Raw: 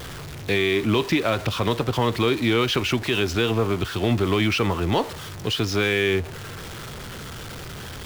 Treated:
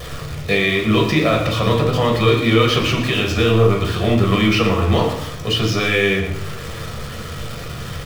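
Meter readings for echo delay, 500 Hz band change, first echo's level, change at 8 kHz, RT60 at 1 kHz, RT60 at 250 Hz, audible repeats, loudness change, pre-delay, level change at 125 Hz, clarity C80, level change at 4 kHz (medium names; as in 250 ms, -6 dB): 116 ms, +5.5 dB, -11.0 dB, +3.0 dB, 0.65 s, 0.80 s, 1, +5.5 dB, 6 ms, +8.0 dB, 8.0 dB, +5.0 dB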